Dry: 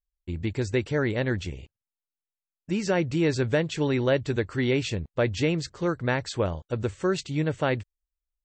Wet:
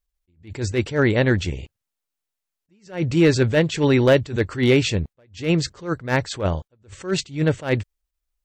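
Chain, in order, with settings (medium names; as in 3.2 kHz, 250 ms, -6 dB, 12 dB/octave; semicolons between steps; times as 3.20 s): overload inside the chain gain 17 dB; attacks held to a fixed rise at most 180 dB/s; trim +8.5 dB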